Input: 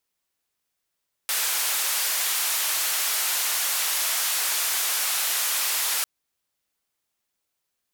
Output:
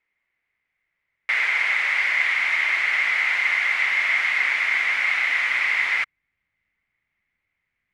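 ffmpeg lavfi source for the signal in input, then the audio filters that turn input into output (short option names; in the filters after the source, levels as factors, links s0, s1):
-f lavfi -i "anoisesrc=c=white:d=4.75:r=44100:seed=1,highpass=f=830,lowpass=f=16000,volume=-18.5dB"
-af "asubboost=boost=4:cutoff=210,lowpass=f=2100:t=q:w=11"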